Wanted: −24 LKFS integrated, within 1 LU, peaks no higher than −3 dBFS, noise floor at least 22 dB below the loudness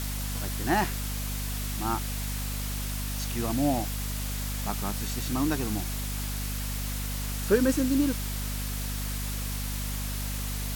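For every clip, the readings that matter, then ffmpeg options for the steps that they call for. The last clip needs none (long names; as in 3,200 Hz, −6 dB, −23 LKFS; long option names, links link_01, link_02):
mains hum 50 Hz; hum harmonics up to 250 Hz; level of the hum −30 dBFS; background noise floor −32 dBFS; target noise floor −52 dBFS; integrated loudness −30.0 LKFS; sample peak −10.5 dBFS; target loudness −24.0 LKFS
→ -af "bandreject=frequency=50:width_type=h:width=4,bandreject=frequency=100:width_type=h:width=4,bandreject=frequency=150:width_type=h:width=4,bandreject=frequency=200:width_type=h:width=4,bandreject=frequency=250:width_type=h:width=4"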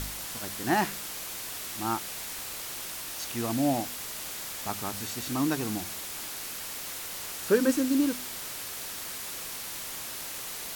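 mains hum none found; background noise floor −38 dBFS; target noise floor −54 dBFS
→ -af "afftdn=noise_reduction=16:noise_floor=-38"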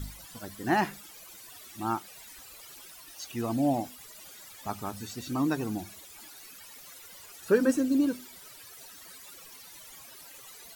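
background noise floor −50 dBFS; target noise floor −53 dBFS
→ -af "afftdn=noise_reduction=6:noise_floor=-50"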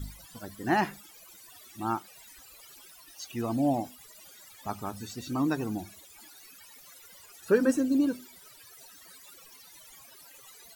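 background noise floor −53 dBFS; integrated loudness −30.0 LKFS; sample peak −12.0 dBFS; target loudness −24.0 LKFS
→ -af "volume=6dB"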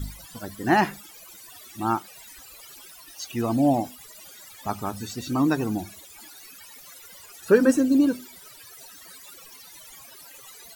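integrated loudness −24.0 LKFS; sample peak −6.0 dBFS; background noise floor −47 dBFS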